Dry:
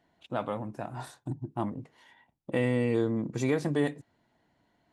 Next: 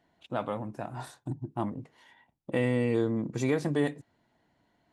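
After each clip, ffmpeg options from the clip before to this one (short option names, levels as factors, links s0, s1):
-af anull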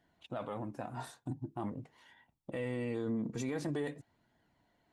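-af "flanger=delay=0.6:depth=3.8:regen=62:speed=0.46:shape=sinusoidal,alimiter=level_in=2:limit=0.0631:level=0:latency=1:release=30,volume=0.501,volume=1.19"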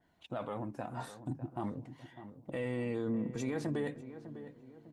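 -filter_complex "[0:a]asplit=2[s0][s1];[s1]adelay=602,lowpass=f=1300:p=1,volume=0.251,asplit=2[s2][s3];[s3]adelay=602,lowpass=f=1300:p=1,volume=0.45,asplit=2[s4][s5];[s5]adelay=602,lowpass=f=1300:p=1,volume=0.45,asplit=2[s6][s7];[s7]adelay=602,lowpass=f=1300:p=1,volume=0.45,asplit=2[s8][s9];[s9]adelay=602,lowpass=f=1300:p=1,volume=0.45[s10];[s0][s2][s4][s6][s8][s10]amix=inputs=6:normalize=0,adynamicequalizer=threshold=0.00141:dfrequency=3000:dqfactor=0.7:tfrequency=3000:tqfactor=0.7:attack=5:release=100:ratio=0.375:range=2:mode=cutabove:tftype=highshelf,volume=1.12"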